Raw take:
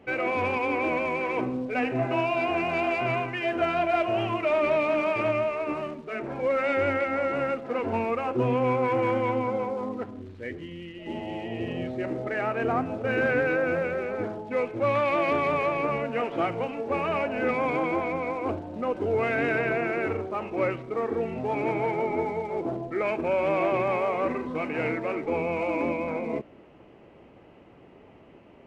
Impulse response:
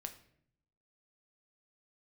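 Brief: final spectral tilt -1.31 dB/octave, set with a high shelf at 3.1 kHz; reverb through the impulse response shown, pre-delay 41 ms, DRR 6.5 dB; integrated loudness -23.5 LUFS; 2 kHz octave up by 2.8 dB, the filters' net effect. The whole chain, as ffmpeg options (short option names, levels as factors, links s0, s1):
-filter_complex "[0:a]equalizer=f=2000:t=o:g=6.5,highshelf=f=3100:g=-8,asplit=2[s0][s1];[1:a]atrim=start_sample=2205,adelay=41[s2];[s1][s2]afir=irnorm=-1:irlink=0,volume=0.708[s3];[s0][s3]amix=inputs=2:normalize=0,volume=1.33"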